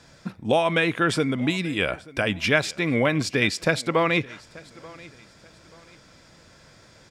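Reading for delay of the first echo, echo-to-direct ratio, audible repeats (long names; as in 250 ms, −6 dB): 884 ms, −21.5 dB, 2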